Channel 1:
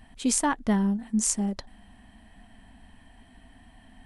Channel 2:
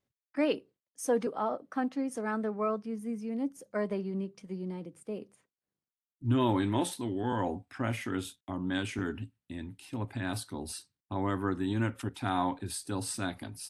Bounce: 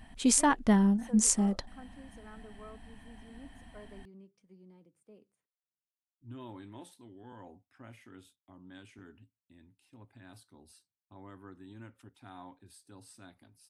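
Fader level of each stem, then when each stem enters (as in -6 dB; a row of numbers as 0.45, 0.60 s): 0.0, -19.0 dB; 0.00, 0.00 s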